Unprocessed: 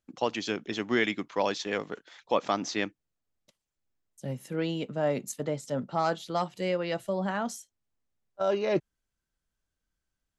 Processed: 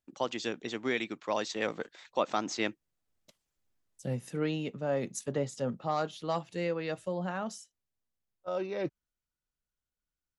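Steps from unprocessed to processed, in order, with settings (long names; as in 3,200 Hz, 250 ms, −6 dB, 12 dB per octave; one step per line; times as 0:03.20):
source passing by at 0:03.46, 22 m/s, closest 13 metres
speech leveller within 4 dB 0.5 s
level +7.5 dB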